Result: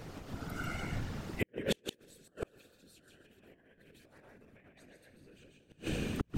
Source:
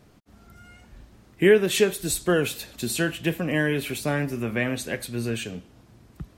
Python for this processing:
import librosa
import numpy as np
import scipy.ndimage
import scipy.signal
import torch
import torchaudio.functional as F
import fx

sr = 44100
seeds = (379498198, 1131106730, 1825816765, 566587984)

y = fx.peak_eq(x, sr, hz=11000.0, db=-5.5, octaves=1.2)
y = y + 10.0 ** (-3.0 / 20.0) * np.pad(y, (int(141 * sr / 1000.0), 0))[:len(y)]
y = fx.rev_schroeder(y, sr, rt60_s=2.4, comb_ms=26, drr_db=9.5)
y = fx.whisperise(y, sr, seeds[0])
y = fx.over_compress(y, sr, threshold_db=-26.0, ratio=-0.5)
y = fx.hum_notches(y, sr, base_hz=60, count=6)
y = fx.gate_flip(y, sr, shuts_db=-23.0, range_db=-40)
y = F.gain(torch.from_numpy(y), 5.5).numpy()